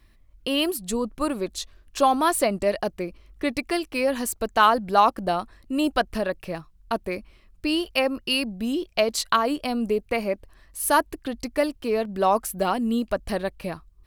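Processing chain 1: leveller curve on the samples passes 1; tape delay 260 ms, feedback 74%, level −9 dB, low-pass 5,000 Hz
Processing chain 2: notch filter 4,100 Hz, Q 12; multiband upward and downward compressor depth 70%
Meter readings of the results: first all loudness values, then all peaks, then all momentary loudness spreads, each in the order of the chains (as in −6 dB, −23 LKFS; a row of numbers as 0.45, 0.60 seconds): −21.0, −25.5 LKFS; −3.5, −4.0 dBFS; 10, 8 LU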